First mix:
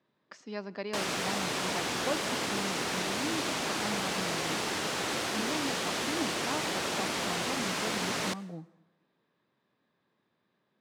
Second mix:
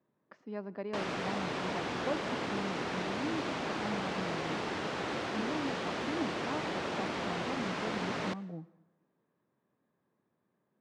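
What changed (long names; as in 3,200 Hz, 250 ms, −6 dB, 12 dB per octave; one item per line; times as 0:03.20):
speech: add high-shelf EQ 2,400 Hz −10.5 dB
master: add head-to-tape spacing loss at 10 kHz 23 dB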